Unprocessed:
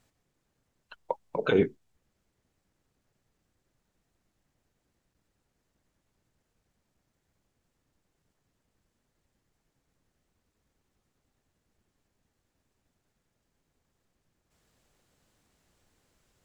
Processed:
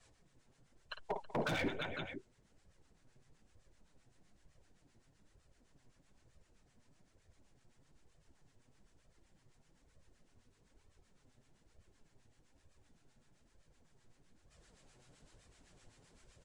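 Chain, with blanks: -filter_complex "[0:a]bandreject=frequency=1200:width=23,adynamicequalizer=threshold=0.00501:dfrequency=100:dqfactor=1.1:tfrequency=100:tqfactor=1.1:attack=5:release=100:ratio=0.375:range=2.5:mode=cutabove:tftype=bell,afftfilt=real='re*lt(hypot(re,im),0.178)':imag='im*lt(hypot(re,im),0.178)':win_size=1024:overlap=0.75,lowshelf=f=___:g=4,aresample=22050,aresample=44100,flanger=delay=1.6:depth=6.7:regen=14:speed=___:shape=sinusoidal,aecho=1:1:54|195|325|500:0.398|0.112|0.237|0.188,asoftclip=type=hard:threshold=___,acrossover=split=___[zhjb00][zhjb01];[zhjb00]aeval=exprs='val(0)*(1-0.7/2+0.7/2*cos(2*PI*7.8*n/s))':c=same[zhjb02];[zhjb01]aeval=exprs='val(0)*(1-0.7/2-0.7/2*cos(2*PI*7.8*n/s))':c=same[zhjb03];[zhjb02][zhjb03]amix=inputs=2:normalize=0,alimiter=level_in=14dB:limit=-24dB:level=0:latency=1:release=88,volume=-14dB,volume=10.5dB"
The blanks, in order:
160, 1.1, -37dB, 880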